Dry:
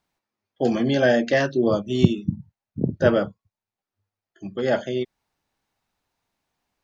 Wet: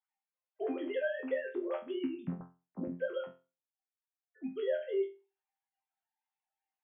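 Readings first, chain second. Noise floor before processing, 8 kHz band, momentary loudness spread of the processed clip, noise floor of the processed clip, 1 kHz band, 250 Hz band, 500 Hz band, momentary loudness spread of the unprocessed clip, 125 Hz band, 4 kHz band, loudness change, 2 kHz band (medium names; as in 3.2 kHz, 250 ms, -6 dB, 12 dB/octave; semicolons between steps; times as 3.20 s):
under -85 dBFS, no reading, 9 LU, under -85 dBFS, -19.0 dB, -16.5 dB, -13.0 dB, 16 LU, -23.0 dB, -19.5 dB, -15.0 dB, -15.5 dB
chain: formants replaced by sine waves; compression, threshold -24 dBFS, peak gain reduction 11.5 dB; chord resonator F2 fifth, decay 0.31 s; trim +3.5 dB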